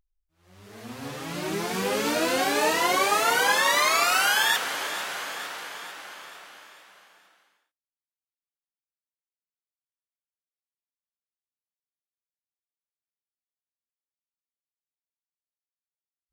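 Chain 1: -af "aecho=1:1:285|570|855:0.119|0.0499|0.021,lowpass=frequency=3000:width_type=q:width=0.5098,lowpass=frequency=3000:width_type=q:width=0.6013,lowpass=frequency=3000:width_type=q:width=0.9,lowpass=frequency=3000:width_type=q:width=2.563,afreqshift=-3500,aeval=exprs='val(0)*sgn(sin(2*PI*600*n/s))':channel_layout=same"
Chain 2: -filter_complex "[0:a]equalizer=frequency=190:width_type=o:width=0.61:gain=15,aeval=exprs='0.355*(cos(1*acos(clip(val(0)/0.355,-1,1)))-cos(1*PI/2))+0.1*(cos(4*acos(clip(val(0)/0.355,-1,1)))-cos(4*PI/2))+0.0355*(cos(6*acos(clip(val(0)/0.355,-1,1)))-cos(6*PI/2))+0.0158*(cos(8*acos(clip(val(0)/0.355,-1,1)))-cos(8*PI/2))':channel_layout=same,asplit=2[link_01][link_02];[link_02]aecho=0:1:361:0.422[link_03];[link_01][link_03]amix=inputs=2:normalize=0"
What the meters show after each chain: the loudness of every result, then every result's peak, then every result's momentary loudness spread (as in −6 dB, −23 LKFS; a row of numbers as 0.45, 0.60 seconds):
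−23.0, −21.0 LKFS; −10.0, −5.0 dBFS; 19, 18 LU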